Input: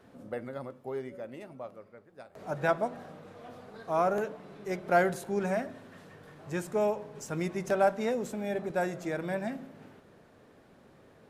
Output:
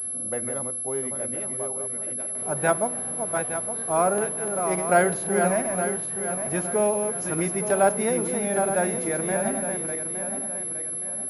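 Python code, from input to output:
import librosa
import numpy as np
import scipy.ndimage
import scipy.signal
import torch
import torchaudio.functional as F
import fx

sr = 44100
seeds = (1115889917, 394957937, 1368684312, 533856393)

y = fx.reverse_delay_fb(x, sr, ms=433, feedback_pct=62, wet_db=-6)
y = scipy.signal.sosfilt(scipy.signal.butter(2, 52.0, 'highpass', fs=sr, output='sos'), y)
y = fx.pwm(y, sr, carrier_hz=11000.0)
y = F.gain(torch.from_numpy(y), 5.0).numpy()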